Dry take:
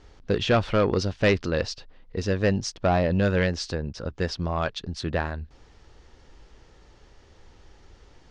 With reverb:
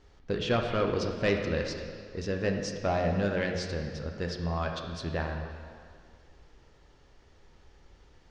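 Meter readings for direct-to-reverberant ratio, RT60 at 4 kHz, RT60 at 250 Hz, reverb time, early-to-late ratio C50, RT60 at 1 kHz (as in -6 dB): 2.5 dB, 2.0 s, 2.1 s, 2.1 s, 4.5 dB, 2.1 s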